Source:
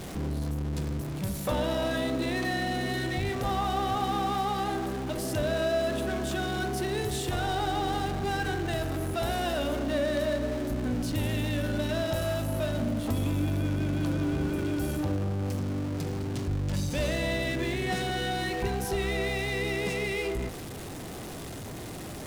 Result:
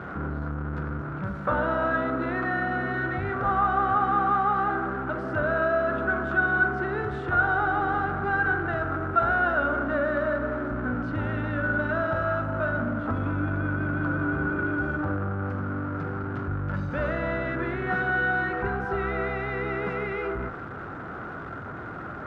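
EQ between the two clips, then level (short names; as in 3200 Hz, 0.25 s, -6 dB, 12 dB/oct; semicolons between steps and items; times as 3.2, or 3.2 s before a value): HPF 51 Hz; synth low-pass 1400 Hz, resonance Q 10; 0.0 dB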